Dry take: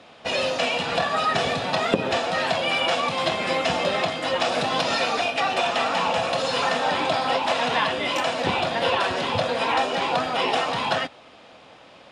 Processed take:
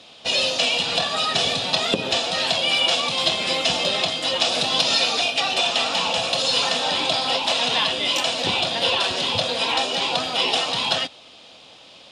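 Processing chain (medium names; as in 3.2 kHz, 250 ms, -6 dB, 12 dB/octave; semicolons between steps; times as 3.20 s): resonant high shelf 2.5 kHz +9.5 dB, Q 1.5; trim -2 dB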